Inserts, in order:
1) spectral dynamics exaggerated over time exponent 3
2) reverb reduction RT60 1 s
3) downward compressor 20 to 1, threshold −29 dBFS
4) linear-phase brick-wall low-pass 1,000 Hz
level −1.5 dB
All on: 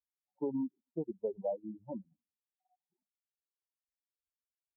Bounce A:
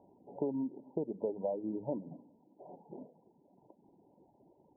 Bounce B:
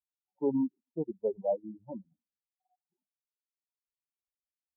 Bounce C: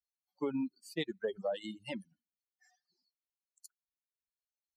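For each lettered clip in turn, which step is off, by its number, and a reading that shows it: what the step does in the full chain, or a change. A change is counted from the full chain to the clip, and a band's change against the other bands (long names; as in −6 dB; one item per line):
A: 1, change in momentary loudness spread +10 LU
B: 3, average gain reduction 2.5 dB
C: 4, change in momentary loudness spread −2 LU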